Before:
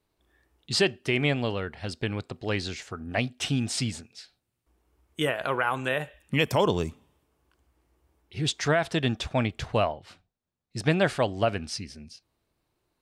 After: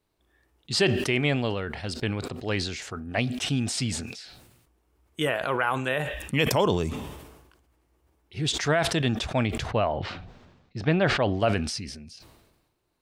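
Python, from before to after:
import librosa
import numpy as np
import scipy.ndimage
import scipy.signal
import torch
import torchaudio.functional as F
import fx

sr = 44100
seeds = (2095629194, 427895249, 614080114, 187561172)

y = fx.air_absorb(x, sr, metres=190.0, at=(9.71, 11.4))
y = fx.sustainer(y, sr, db_per_s=48.0)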